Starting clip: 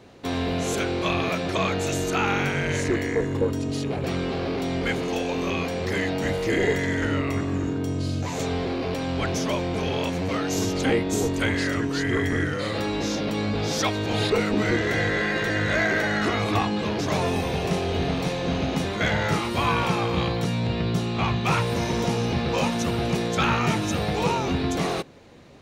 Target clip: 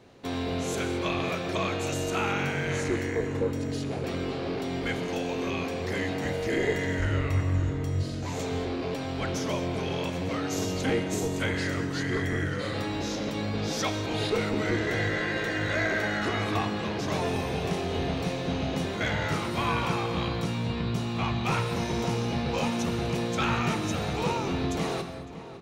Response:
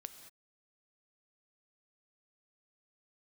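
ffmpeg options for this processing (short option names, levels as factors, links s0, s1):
-filter_complex "[0:a]asplit=3[s0][s1][s2];[s0]afade=t=out:st=6.98:d=0.02[s3];[s1]asubboost=boost=8:cutoff=70,afade=t=in:st=6.98:d=0.02,afade=t=out:st=8.02:d=0.02[s4];[s2]afade=t=in:st=8.02:d=0.02[s5];[s3][s4][s5]amix=inputs=3:normalize=0,asplit=2[s6][s7];[s7]adelay=557,lowpass=f=3100:p=1,volume=0.2,asplit=2[s8][s9];[s9]adelay=557,lowpass=f=3100:p=1,volume=0.52,asplit=2[s10][s11];[s11]adelay=557,lowpass=f=3100:p=1,volume=0.52,asplit=2[s12][s13];[s13]adelay=557,lowpass=f=3100:p=1,volume=0.52,asplit=2[s14][s15];[s15]adelay=557,lowpass=f=3100:p=1,volume=0.52[s16];[s6][s8][s10][s12][s14][s16]amix=inputs=6:normalize=0[s17];[1:a]atrim=start_sample=2205[s18];[s17][s18]afir=irnorm=-1:irlink=0"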